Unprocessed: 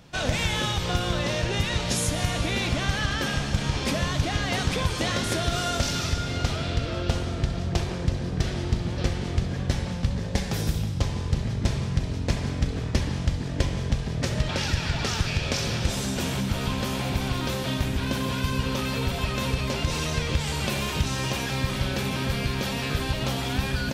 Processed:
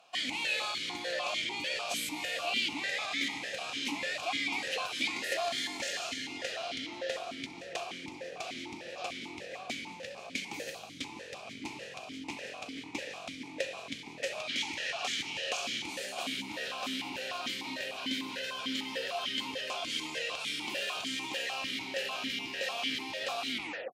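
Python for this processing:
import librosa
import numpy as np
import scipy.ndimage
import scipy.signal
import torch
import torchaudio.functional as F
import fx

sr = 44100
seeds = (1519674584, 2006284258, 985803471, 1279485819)

y = fx.tape_stop_end(x, sr, length_s=0.42)
y = fx.tilt_eq(y, sr, slope=4.5)
y = fx.formant_shift(y, sr, semitones=3)
y = fx.vowel_held(y, sr, hz=6.7)
y = y * librosa.db_to_amplitude(6.0)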